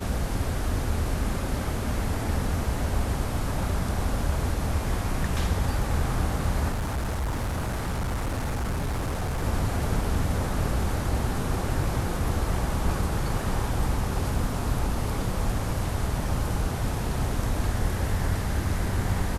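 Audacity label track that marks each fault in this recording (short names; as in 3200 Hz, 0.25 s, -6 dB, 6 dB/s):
6.710000	9.440000	clipped -24.5 dBFS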